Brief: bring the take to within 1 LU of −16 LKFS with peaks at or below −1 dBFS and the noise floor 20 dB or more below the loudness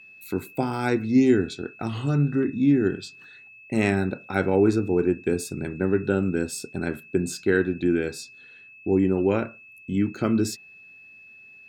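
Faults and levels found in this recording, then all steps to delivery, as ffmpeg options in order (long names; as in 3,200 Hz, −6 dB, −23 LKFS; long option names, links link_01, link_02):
interfering tone 2,600 Hz; level of the tone −46 dBFS; integrated loudness −24.5 LKFS; sample peak −8.0 dBFS; target loudness −16.0 LKFS
→ -af "bandreject=frequency=2600:width=30"
-af "volume=8.5dB,alimiter=limit=-1dB:level=0:latency=1"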